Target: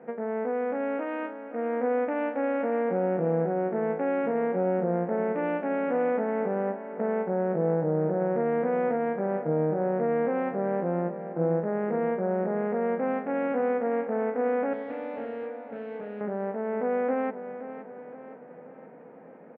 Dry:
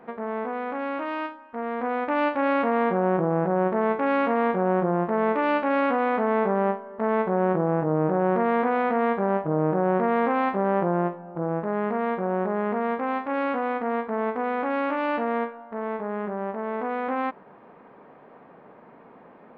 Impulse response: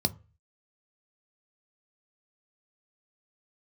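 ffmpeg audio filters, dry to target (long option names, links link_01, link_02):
-filter_complex "[0:a]alimiter=limit=-16.5dB:level=0:latency=1:release=318,asettb=1/sr,asplit=3[link_01][link_02][link_03];[link_01]atrim=end=14.734[link_04];[link_02]atrim=start=14.73:end=16.21,asetpts=PTS-STARTPTS,afade=type=in:duration=0.004:curve=qsin,afade=type=out:start_time=1.476:duration=0.004:curve=qsin,volume=34dB,asoftclip=hard,volume=-34dB[link_05];[link_03]atrim=start=16.206[link_06];[link_04][link_05]acrossfade=duration=0.004:curve1=hsin:curve2=qsin[link_07];[link_07][link_06]acrossfade=duration=0.004:curve1=qsin:curve2=hsin,highpass=130,equalizer=frequency=160:width_type=q:width=4:gain=6,equalizer=frequency=260:width_type=q:width=4:gain=3,equalizer=frequency=500:width_type=q:width=4:gain=8,equalizer=frequency=1100:width_type=q:width=4:gain=-10,lowpass=frequency=2400:width=0.5412,lowpass=frequency=2400:width=1.3066,aecho=1:1:521|1042|1563|2084|2605:0.251|0.131|0.0679|0.0353|0.0184,volume=-2.5dB"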